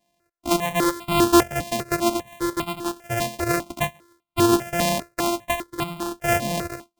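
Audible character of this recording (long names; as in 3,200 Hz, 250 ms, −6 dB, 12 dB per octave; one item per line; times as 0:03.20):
a buzz of ramps at a fixed pitch in blocks of 128 samples
sample-and-hold tremolo
notches that jump at a steady rate 5 Hz 370–1,700 Hz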